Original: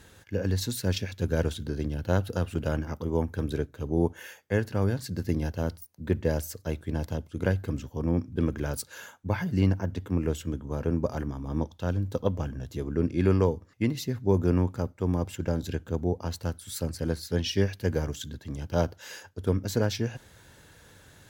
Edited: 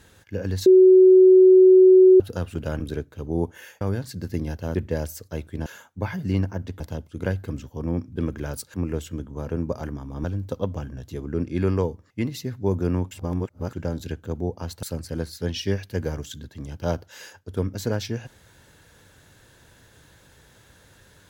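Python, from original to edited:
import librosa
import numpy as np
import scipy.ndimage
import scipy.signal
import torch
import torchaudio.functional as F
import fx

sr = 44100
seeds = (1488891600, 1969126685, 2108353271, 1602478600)

y = fx.edit(x, sr, fx.bleep(start_s=0.66, length_s=1.54, hz=373.0, db=-8.5),
    fx.cut(start_s=2.8, length_s=0.62),
    fx.cut(start_s=4.43, length_s=0.33),
    fx.cut(start_s=5.7, length_s=0.39),
    fx.move(start_s=8.94, length_s=1.14, to_s=7.0),
    fx.cut(start_s=11.58, length_s=0.29),
    fx.reverse_span(start_s=14.74, length_s=0.62),
    fx.cut(start_s=16.46, length_s=0.27), tone=tone)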